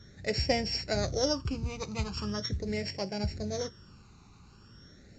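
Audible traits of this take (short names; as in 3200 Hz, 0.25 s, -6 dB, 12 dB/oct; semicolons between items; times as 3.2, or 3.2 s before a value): a buzz of ramps at a fixed pitch in blocks of 8 samples; phasing stages 12, 0.41 Hz, lowest notch 560–1200 Hz; µ-law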